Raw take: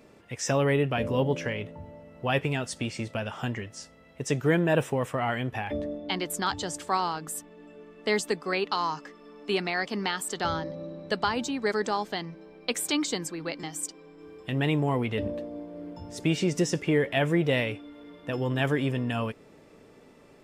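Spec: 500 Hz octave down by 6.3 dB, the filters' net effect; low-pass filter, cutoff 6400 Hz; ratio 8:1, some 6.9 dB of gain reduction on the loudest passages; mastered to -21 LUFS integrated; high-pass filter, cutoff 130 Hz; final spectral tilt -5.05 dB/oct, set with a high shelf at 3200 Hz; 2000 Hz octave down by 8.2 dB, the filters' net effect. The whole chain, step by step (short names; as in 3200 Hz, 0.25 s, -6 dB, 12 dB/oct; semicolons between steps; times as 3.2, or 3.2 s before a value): HPF 130 Hz; LPF 6400 Hz; bell 500 Hz -7.5 dB; bell 2000 Hz -8 dB; high shelf 3200 Hz -5.5 dB; compressor 8:1, threshold -30 dBFS; gain +16.5 dB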